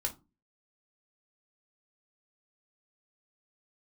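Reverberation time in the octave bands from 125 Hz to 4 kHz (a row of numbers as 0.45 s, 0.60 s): 0.45 s, 0.45 s, 0.30 s, 0.25 s, 0.20 s, 0.15 s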